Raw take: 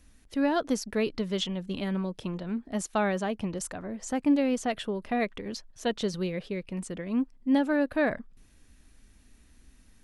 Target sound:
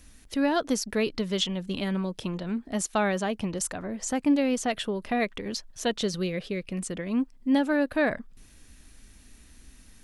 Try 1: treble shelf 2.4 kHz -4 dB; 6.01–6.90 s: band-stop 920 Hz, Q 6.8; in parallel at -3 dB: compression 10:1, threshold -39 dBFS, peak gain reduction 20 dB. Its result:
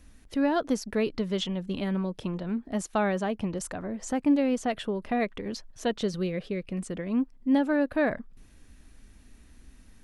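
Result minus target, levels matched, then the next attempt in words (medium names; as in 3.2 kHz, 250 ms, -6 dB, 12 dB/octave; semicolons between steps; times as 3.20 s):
4 kHz band -5.0 dB
treble shelf 2.4 kHz +5 dB; 6.01–6.90 s: band-stop 920 Hz, Q 6.8; in parallel at -3 dB: compression 10:1, threshold -39 dBFS, peak gain reduction 20 dB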